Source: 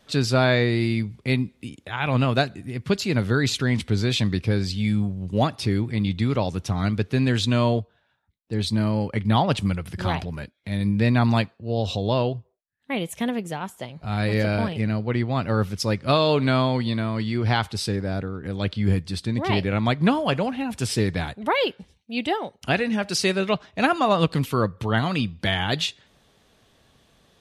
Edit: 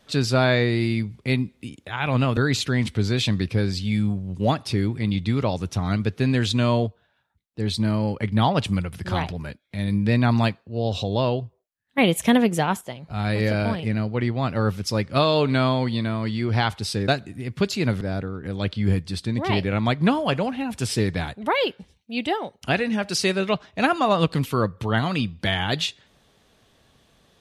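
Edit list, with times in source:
2.37–3.30 s: move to 18.01 s
12.91–13.74 s: gain +8.5 dB

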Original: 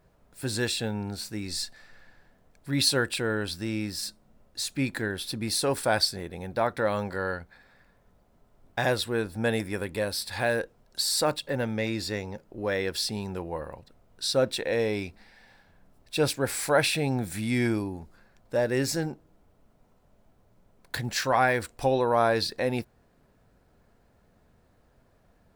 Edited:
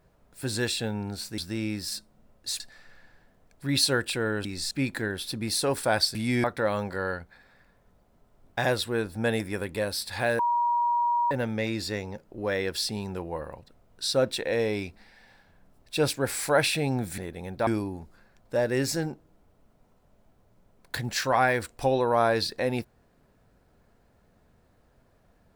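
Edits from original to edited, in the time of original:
1.38–1.64 s: swap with 3.49–4.71 s
6.15–6.64 s: swap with 17.38–17.67 s
10.59–11.51 s: bleep 954 Hz -21.5 dBFS

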